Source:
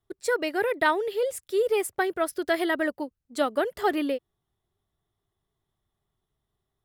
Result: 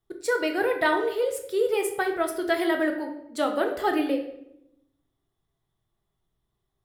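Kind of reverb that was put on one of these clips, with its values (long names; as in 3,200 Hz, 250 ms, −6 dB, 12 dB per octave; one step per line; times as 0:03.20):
rectangular room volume 210 cubic metres, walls mixed, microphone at 0.7 metres
level −1 dB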